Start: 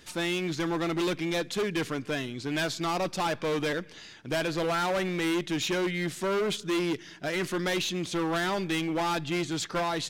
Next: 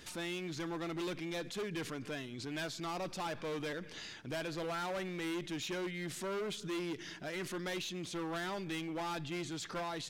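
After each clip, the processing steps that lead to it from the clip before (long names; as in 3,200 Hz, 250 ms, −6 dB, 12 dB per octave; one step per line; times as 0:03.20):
brickwall limiter −35.5 dBFS, peak gain reduction 10.5 dB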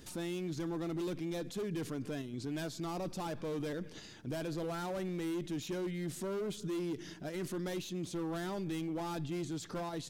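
drawn EQ curve 270 Hz 0 dB, 2,200 Hz −12 dB, 13,000 Hz −2 dB
in parallel at −0.5 dB: output level in coarse steps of 9 dB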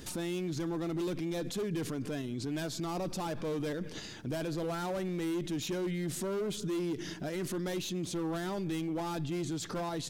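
brickwall limiter −35.5 dBFS, peak gain reduction 5.5 dB
level +7 dB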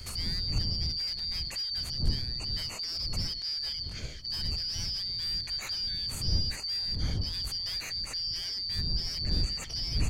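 band-splitting scrambler in four parts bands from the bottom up 4321
wind on the microphone 81 Hz −35 dBFS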